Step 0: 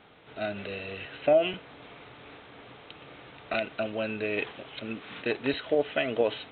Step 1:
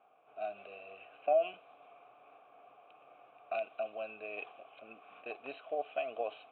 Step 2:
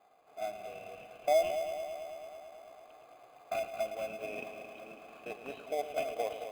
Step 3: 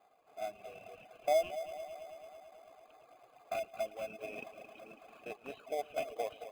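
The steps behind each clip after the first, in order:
formant filter a; low-pass that shuts in the quiet parts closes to 2,100 Hz, open at −31 dBFS
in parallel at −6 dB: sample-rate reduction 2,800 Hz, jitter 0%; on the sum: echo machine with several playback heads 110 ms, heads first and second, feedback 70%, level −12 dB; level −1.5 dB
reverb reduction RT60 0.75 s; level −2 dB

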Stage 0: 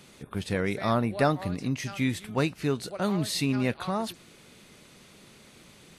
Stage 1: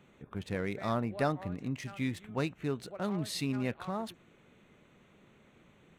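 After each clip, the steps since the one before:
adaptive Wiener filter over 9 samples
level −6.5 dB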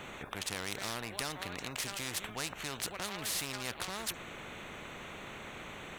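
in parallel at +0.5 dB: brickwall limiter −27 dBFS, peak gain reduction 11 dB
on the sum: every bin compressed towards the loudest bin 4 to 1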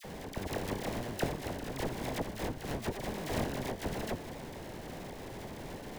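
sample-rate reduction 1,300 Hz, jitter 20%
all-pass dispersion lows, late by 45 ms, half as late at 1,300 Hz
level +2.5 dB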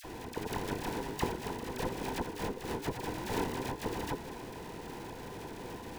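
frequency inversion band by band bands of 500 Hz
upward compression, threshold −53 dBFS

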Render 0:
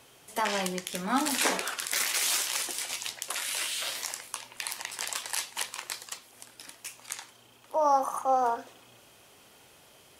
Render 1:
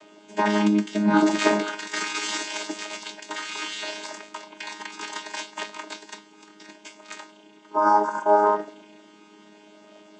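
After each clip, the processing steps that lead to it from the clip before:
channel vocoder with a chord as carrier bare fifth, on G#3
level +7.5 dB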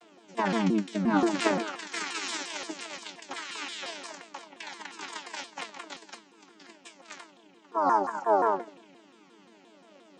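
pitch modulation by a square or saw wave saw down 5.7 Hz, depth 250 cents
level −5.5 dB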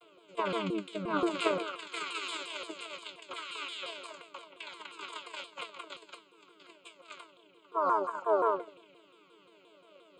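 phaser with its sweep stopped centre 1,200 Hz, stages 8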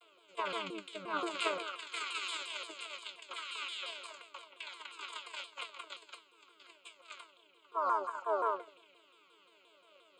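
high-pass filter 1,100 Hz 6 dB per octave

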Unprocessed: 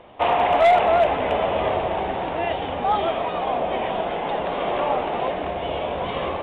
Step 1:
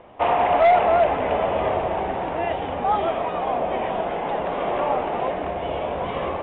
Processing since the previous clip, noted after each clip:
low-pass filter 2,500 Hz 12 dB per octave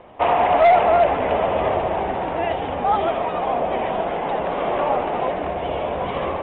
pitch vibrato 14 Hz 42 cents
level +2 dB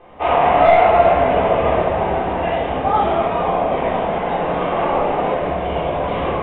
rectangular room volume 470 cubic metres, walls mixed, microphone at 3.7 metres
level −6 dB

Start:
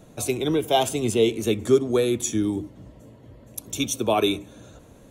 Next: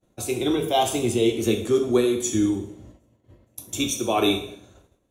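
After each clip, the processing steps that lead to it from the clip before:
amplitude tremolo 2.1 Hz, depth 35%
coupled-rooms reverb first 0.61 s, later 2.4 s, from −27 dB, DRR 2.5 dB
downward expander −37 dBFS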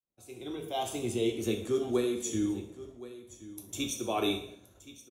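fade in at the beginning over 1.19 s
single-tap delay 1,072 ms −16.5 dB
level −9 dB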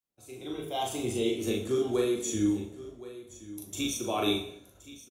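double-tracking delay 39 ms −2 dB

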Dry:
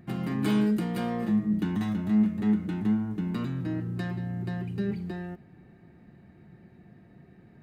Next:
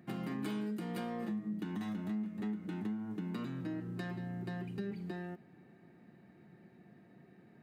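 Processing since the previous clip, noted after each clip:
high-pass filter 180 Hz 12 dB per octave
downward compressor 6 to 1, threshold −32 dBFS, peak gain reduction 11 dB
level −3.5 dB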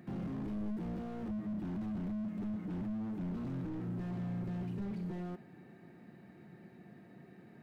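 dynamic equaliser 960 Hz, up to +3 dB, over −55 dBFS, Q 1
slew-rate limiting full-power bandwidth 2.1 Hz
level +4 dB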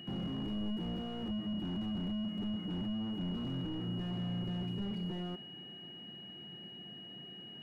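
steady tone 2,900 Hz −49 dBFS
level +1 dB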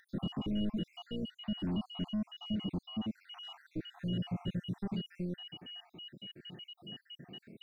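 time-frequency cells dropped at random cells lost 66%
level +4 dB

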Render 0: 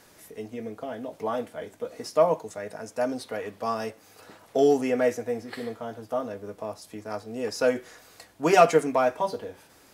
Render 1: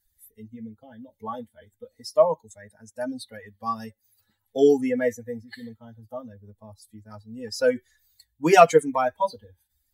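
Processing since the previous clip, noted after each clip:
spectral dynamics exaggerated over time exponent 2
level +5.5 dB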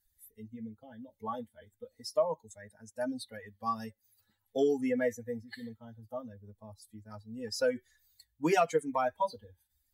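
downward compressor 3 to 1, threshold −22 dBFS, peak gain reduction 11 dB
level −4 dB

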